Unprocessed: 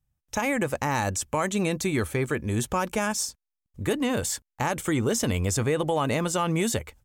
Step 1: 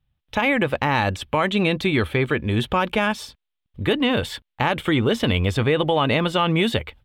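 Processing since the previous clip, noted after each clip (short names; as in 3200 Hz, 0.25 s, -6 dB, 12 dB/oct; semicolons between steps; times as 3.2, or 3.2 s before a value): resonant high shelf 4800 Hz -12.5 dB, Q 3; gain +5 dB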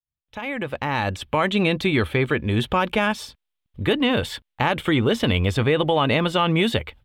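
opening faded in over 1.42 s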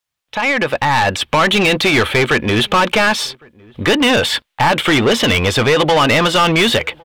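overdrive pedal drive 25 dB, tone 5400 Hz, clips at -4.5 dBFS; outdoor echo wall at 190 m, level -27 dB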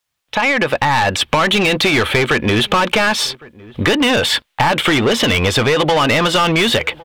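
compressor 4:1, threshold -18 dBFS, peak gain reduction 7 dB; gain +5 dB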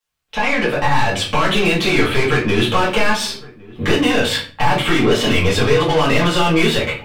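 reverb RT60 0.45 s, pre-delay 4 ms, DRR -8 dB; gain -11 dB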